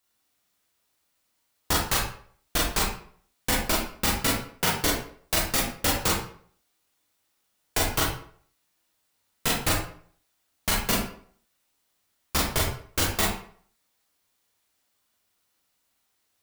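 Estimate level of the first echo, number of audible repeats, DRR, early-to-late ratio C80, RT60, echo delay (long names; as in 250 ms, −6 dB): no echo audible, no echo audible, −4.0 dB, 7.0 dB, 0.55 s, no echo audible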